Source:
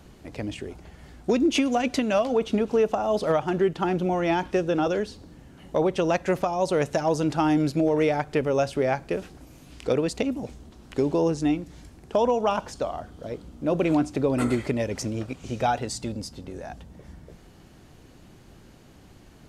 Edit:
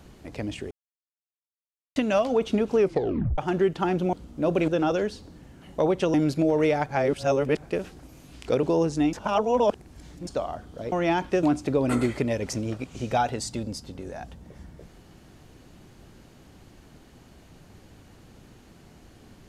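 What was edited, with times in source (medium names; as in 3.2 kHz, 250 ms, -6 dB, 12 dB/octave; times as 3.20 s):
0.71–1.96 s: mute
2.78 s: tape stop 0.60 s
4.13–4.64 s: swap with 13.37–13.92 s
6.10–7.52 s: delete
8.27–9.01 s: reverse
10.01–11.08 s: delete
11.58–12.72 s: reverse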